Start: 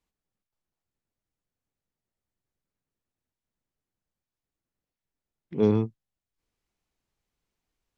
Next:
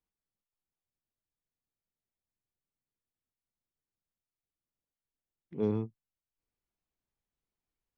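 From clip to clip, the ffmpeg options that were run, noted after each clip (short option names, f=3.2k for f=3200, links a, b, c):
-af "highshelf=f=3.4k:g=-8,volume=-8.5dB"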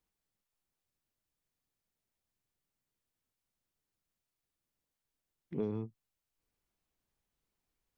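-af "acompressor=threshold=-37dB:ratio=8,volume=5dB"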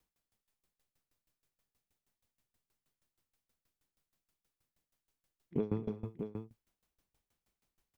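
-af "aecho=1:1:241|306|626:0.473|0.211|0.398,aeval=exprs='val(0)*pow(10,-23*if(lt(mod(6.3*n/s,1),2*abs(6.3)/1000),1-mod(6.3*n/s,1)/(2*abs(6.3)/1000),(mod(6.3*n/s,1)-2*abs(6.3)/1000)/(1-2*abs(6.3)/1000))/20)':c=same,volume=8.5dB"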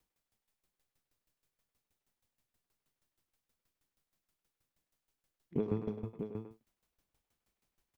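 -filter_complex "[0:a]asplit=2[a][b];[b]adelay=100,highpass=300,lowpass=3.4k,asoftclip=type=hard:threshold=-29.5dB,volume=-7dB[c];[a][c]amix=inputs=2:normalize=0"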